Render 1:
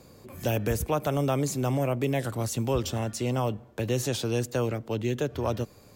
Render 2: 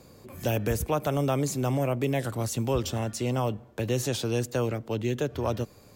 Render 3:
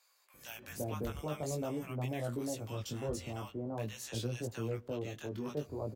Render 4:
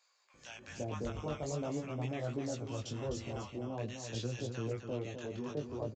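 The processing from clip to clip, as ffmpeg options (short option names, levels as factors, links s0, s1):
-af anull
-filter_complex "[0:a]acrossover=split=970[s0][s1];[s0]adelay=340[s2];[s2][s1]amix=inputs=2:normalize=0,flanger=delay=17:depth=3.7:speed=0.47,volume=0.447"
-af "aecho=1:1:255:0.422,aresample=16000,aresample=44100,volume=0.891"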